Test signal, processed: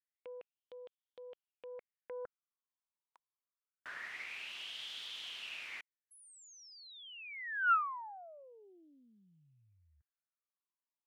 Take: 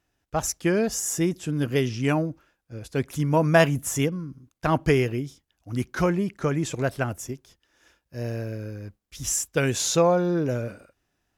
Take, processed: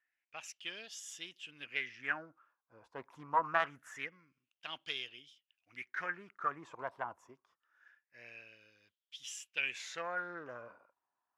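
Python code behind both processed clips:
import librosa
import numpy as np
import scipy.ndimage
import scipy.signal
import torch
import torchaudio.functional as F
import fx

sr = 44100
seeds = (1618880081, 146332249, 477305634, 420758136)

y = fx.filter_lfo_bandpass(x, sr, shape='sine', hz=0.25, low_hz=960.0, high_hz=3300.0, q=7.1)
y = fx.doppler_dist(y, sr, depth_ms=0.19)
y = y * librosa.db_to_amplitude(2.5)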